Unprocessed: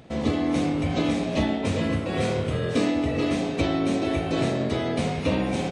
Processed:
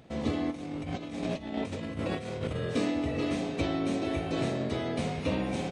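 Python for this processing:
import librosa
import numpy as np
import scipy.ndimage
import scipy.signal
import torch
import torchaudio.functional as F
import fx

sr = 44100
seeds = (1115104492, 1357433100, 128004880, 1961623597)

y = fx.over_compress(x, sr, threshold_db=-28.0, ratio=-0.5, at=(0.5, 2.54), fade=0.02)
y = F.gain(torch.from_numpy(y), -6.0).numpy()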